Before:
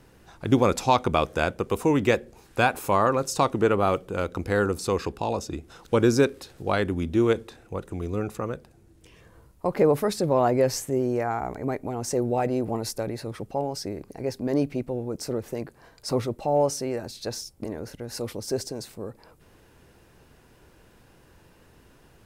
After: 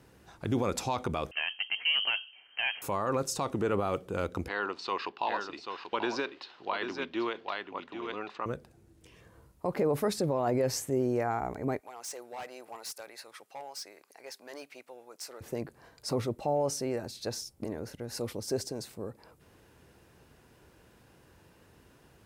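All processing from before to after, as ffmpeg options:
ffmpeg -i in.wav -filter_complex "[0:a]asettb=1/sr,asplit=3[link_01][link_02][link_03];[link_01]atrim=end=1.314[link_04];[link_02]atrim=start=1.31:end=2.82,asetpts=PTS-STARTPTS,afade=type=in:duration=0.004:curve=qsin,afade=type=out:start_time=1.506:duration=0.004:curve=qsin,aeval=exprs='(tanh(4.47*val(0)+0.35)-tanh(0.35))/4.47':channel_layout=same,lowpass=frequency=2700:width_type=q:width=0.5098,lowpass=frequency=2700:width_type=q:width=0.6013,lowpass=frequency=2700:width_type=q:width=0.9,lowpass=frequency=2700:width_type=q:width=2.563,afreqshift=-3200[link_05];[link_03]atrim=start=2.816[link_06];[link_04][link_05]acrossfade=duration=0.004:curve1=hsin:curve2=qsin[link_07];[link_07][link_06]acrossfade=duration=0.004:curve1=qsin:curve2=hsin,asettb=1/sr,asplit=3[link_08][link_09][link_10];[link_08]atrim=end=4.484[link_11];[link_09]atrim=start=4.48:end=8.46,asetpts=PTS-STARTPTS,afade=type=in:duration=0.004:curve=qsin,afade=type=out:start_time=3.976:duration=0.004:curve=qsin,highpass=470,equalizer=frequency=490:width_type=q:width=4:gain=-8,equalizer=frequency=1000:width_type=q:width=4:gain=7,equalizer=frequency=1900:width_type=q:width=4:gain=4,equalizer=frequency=2900:width_type=q:width=4:gain=8,equalizer=frequency=4300:width_type=q:width=4:gain=5,lowpass=frequency=4500:width=0.5412,lowpass=frequency=4500:width=1.3066,aecho=1:1:786:0.398,atrim=end_sample=175518[link_12];[link_10]atrim=start=8.456[link_13];[link_11][link_12]acrossfade=duration=0.004:curve1=hsin:curve2=qsin[link_14];[link_14][link_13]acrossfade=duration=0.004:curve1=qsin:curve2=hsin,asettb=1/sr,asplit=3[link_15][link_16][link_17];[link_15]atrim=end=11.794[link_18];[link_16]atrim=start=11.79:end=15.41,asetpts=PTS-STARTPTS,afade=type=in:duration=0.004:curve=qsin,afade=type=out:start_time=3.616:duration=0.004:curve=qsin,highpass=1100,asoftclip=type=hard:threshold=-33dB[link_19];[link_17]atrim=start=15.406[link_20];[link_18][link_19]acrossfade=duration=0.004:curve1=hsin:curve2=qsin[link_21];[link_21][link_20]acrossfade=duration=0.004:curve1=qsin:curve2=hsin,highpass=51,alimiter=limit=-16.5dB:level=0:latency=1:release=32,volume=-3.5dB" out.wav

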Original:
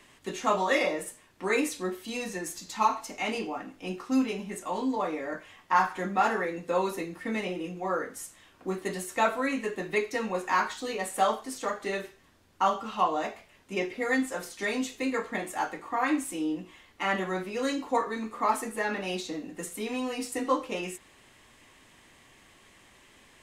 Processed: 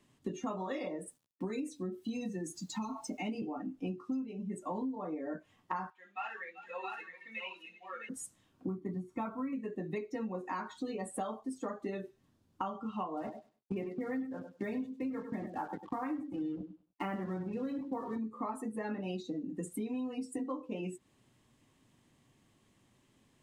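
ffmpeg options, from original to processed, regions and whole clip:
ffmpeg -i in.wav -filter_complex "[0:a]asettb=1/sr,asplit=3[link_01][link_02][link_03];[link_01]atrim=end=1.074[link_04];[link_02]atrim=start=1.07:end=3.42,asetpts=PTS-STARTPTS,afade=type=in:duration=0.004:curve=qsin,afade=type=out:start_time=2.346:duration=0.004:curve=qsin,acrossover=split=320|3000[link_05][link_06][link_07];[link_06]acompressor=threshold=-35dB:ratio=4:attack=3.2:release=140:knee=2.83:detection=peak[link_08];[link_05][link_08][link_07]amix=inputs=3:normalize=0,aeval=exprs='val(0)*gte(abs(val(0)),0.00299)':channel_layout=same[link_09];[link_03]atrim=start=3.416[link_10];[link_04][link_09]acrossfade=duration=0.004:curve1=hsin:curve2=qsin[link_11];[link_11][link_10]acrossfade=duration=0.004:curve1=qsin:curve2=hsin,asettb=1/sr,asplit=3[link_12][link_13][link_14];[link_12]atrim=end=5.904[link_15];[link_13]atrim=start=5.9:end=8.09,asetpts=PTS-STARTPTS,afade=type=in:duration=0.004:curve=qsin,afade=type=out:start_time=2.186:duration=0.004:curve=qsin,bandpass=frequency=2800:width_type=q:width=2,aecho=1:1:63|386|669|733:0.299|0.237|0.596|0.282,atrim=end_sample=96579[link_16];[link_14]atrim=start=8.086[link_17];[link_15][link_16]acrossfade=duration=0.004:curve1=hsin:curve2=qsin[link_18];[link_18][link_17]acrossfade=duration=0.004:curve1=qsin:curve2=hsin,asettb=1/sr,asplit=3[link_19][link_20][link_21];[link_19]atrim=end=8.674[link_22];[link_20]atrim=start=8.67:end=9.53,asetpts=PTS-STARTPTS,afade=type=in:duration=0.004:curve=qsin,afade=type=out:start_time=0.856:duration=0.004:curve=qsin,lowpass=frequency=1800:poles=1,aecho=1:1:0.9:0.5,atrim=end_sample=37926,acrusher=bits=6:mode=log:mix=0:aa=0.000001[link_23];[link_21]atrim=start=9.526[link_24];[link_22][link_23]acrossfade=duration=0.004:curve1=hsin:curve2=qsin[link_25];[link_25][link_24]acrossfade=duration=0.004:curve1=qsin:curve2=hsin,asettb=1/sr,asplit=3[link_26][link_27][link_28];[link_26]atrim=end=13.174[link_29];[link_27]atrim=start=13.17:end=18.18,asetpts=PTS-STARTPTS,afade=type=in:duration=0.004:curve=qsin,afade=type=out:start_time=5.006:duration=0.004:curve=qsin,bass=frequency=250:gain=1,treble=frequency=4000:gain=-13,acrusher=bits=5:mix=0:aa=0.5,aecho=1:1:99|198|297:0.316|0.0791|0.0198,atrim=end_sample=220941[link_30];[link_28]atrim=start=18.176[link_31];[link_29][link_30]acrossfade=duration=0.004:curve1=hsin:curve2=qsin[link_32];[link_32][link_31]acrossfade=duration=0.004:curve1=qsin:curve2=hsin,afftdn=noise_reduction=17:noise_floor=-37,equalizer=frequency=125:width_type=o:width=1:gain=12,equalizer=frequency=250:width_type=o:width=1:gain=7,equalizer=frequency=2000:width_type=o:width=1:gain=-6,acompressor=threshold=-38dB:ratio=10,volume=3dB" out.wav

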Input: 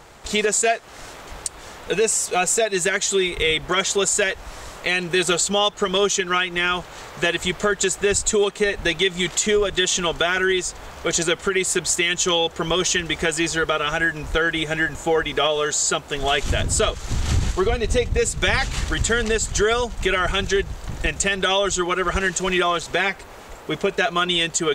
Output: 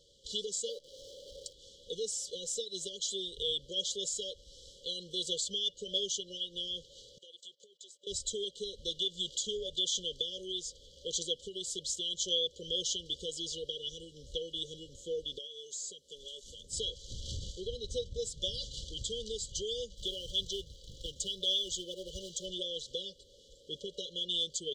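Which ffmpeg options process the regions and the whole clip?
ffmpeg -i in.wav -filter_complex "[0:a]asettb=1/sr,asplit=3[link_01][link_02][link_03];[link_01]atrim=end=0.694[link_04];[link_02]atrim=start=0.69:end=1.53,asetpts=PTS-STARTPTS,afade=type=in:duration=0.004:curve=qsin,afade=type=out:start_time=0.836:duration=0.004:curve=qsin,lowpass=7500,equalizer=frequency=550:width_type=o:width=0.84:gain=13,acrusher=bits=7:dc=4:mix=0:aa=0.000001[link_05];[link_03]atrim=start=1.526[link_06];[link_04][link_05]acrossfade=duration=0.004:curve1=hsin:curve2=qsin[link_07];[link_07][link_06]acrossfade=duration=0.004:curve1=qsin:curve2=hsin,asettb=1/sr,asplit=3[link_08][link_09][link_10];[link_08]atrim=end=7.184[link_11];[link_09]atrim=start=7.18:end=8.07,asetpts=PTS-STARTPTS,afade=type=in:duration=0.004:curve=qsin,afade=type=out:start_time=0.886:duration=0.004:curve=qsin,highpass=470,agate=range=-19dB:threshold=-33dB:ratio=16:release=100:detection=peak,acompressor=threshold=-37dB:ratio=4:attack=3.2:release=140:knee=1:detection=peak[link_12];[link_10]atrim=start=8.066[link_13];[link_11][link_12]acrossfade=duration=0.004:curve1=hsin:curve2=qsin[link_14];[link_14][link_13]acrossfade=duration=0.004:curve1=qsin:curve2=hsin,asettb=1/sr,asplit=3[link_15][link_16][link_17];[link_15]atrim=end=15.384[link_18];[link_16]atrim=start=15.38:end=16.73,asetpts=PTS-STARTPTS,afade=type=in:duration=0.004:curve=qsin,afade=type=out:start_time=1.346:duration=0.004:curve=qsin,lowshelf=frequency=320:gain=-9,aecho=1:1:4.7:0.37,atrim=end_sample=59535,acrossover=split=1000|6800[link_19][link_20][link_21];[link_19]acompressor=threshold=-32dB:ratio=4[link_22];[link_20]acompressor=threshold=-37dB:ratio=4[link_23];[link_21]acompressor=threshold=-25dB:ratio=4[link_24];[link_22][link_23][link_24]amix=inputs=3:normalize=0[link_25];[link_17]atrim=start=16.726[link_26];[link_18][link_25]acrossfade=duration=0.004:curve1=hsin:curve2=qsin[link_27];[link_27][link_26]acrossfade=duration=0.004:curve1=qsin:curve2=hsin,asettb=1/sr,asplit=3[link_28][link_29][link_30];[link_28]atrim=end=19.954[link_31];[link_29]atrim=start=19.95:end=22.46,asetpts=PTS-STARTPTS,afade=type=in:duration=0.004:curve=qsin,afade=type=out:start_time=2.506:duration=0.004:curve=qsin,equalizer=frequency=3500:width=2:gain=2.5,acrusher=bits=4:mode=log:mix=0:aa=0.000001[link_32];[link_30]atrim=start=22.456[link_33];[link_31][link_32]acrossfade=duration=0.004:curve1=hsin:curve2=qsin[link_34];[link_34][link_33]acrossfade=duration=0.004:curve1=qsin:curve2=hsin,afftfilt=real='re*(1-between(b*sr/4096,580,2900))':imag='im*(1-between(b*sr/4096,580,2900))':win_size=4096:overlap=0.75,acrossover=split=570 6500:gain=0.2 1 0.0891[link_35][link_36][link_37];[link_35][link_36][link_37]amix=inputs=3:normalize=0,aecho=1:1:1.5:0.36,volume=-9dB" out.wav

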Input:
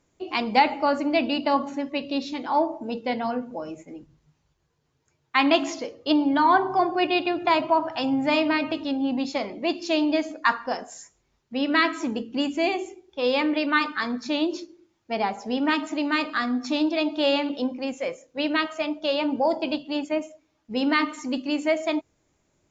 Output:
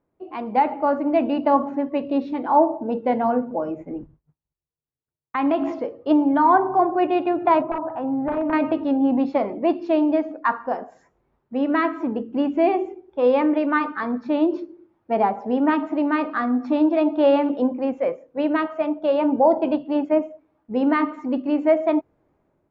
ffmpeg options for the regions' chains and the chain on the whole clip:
ffmpeg -i in.wav -filter_complex "[0:a]asettb=1/sr,asplit=3[link_01][link_02][link_03];[link_01]atrim=end=3.804[link_04];[link_02]atrim=start=3.8:end=5.72,asetpts=PTS-STARTPTS,afade=type=in:duration=0.004:curve=qsin,afade=type=out:start_time=1.916:duration=0.004:curve=qsin,agate=range=-33dB:threshold=-52dB:ratio=3:release=100:detection=peak,lowshelf=frequency=110:gain=12,acompressor=threshold=-24dB:ratio=3:attack=3.2:release=140:knee=1:detection=peak[link_05];[link_03]atrim=start=5.716[link_06];[link_04][link_05]acrossfade=duration=0.004:curve1=hsin:curve2=qsin[link_07];[link_07][link_06]acrossfade=duration=0.004:curve1=qsin:curve2=hsin,asettb=1/sr,asplit=3[link_08][link_09][link_10];[link_08]atrim=end=7.624[link_11];[link_09]atrim=start=7.62:end=8.53,asetpts=PTS-STARTPTS,afade=type=in:duration=0.004:curve=qsin,afade=type=out:start_time=0.906:duration=0.004:curve=qsin,aeval=exprs='(mod(5.01*val(0)+1,2)-1)/5.01':channel_layout=same,acompressor=threshold=-30dB:ratio=2:attack=3.2:release=140:knee=1:detection=peak,lowpass=1600[link_12];[link_10]atrim=start=8.526[link_13];[link_11][link_12]acrossfade=duration=0.004:curve1=hsin:curve2=qsin[link_14];[link_14][link_13]acrossfade=duration=0.004:curve1=qsin:curve2=hsin,dynaudnorm=framelen=210:gausssize=5:maxgain=11.5dB,lowpass=1100,lowshelf=frequency=170:gain=-7,volume=-2dB" out.wav

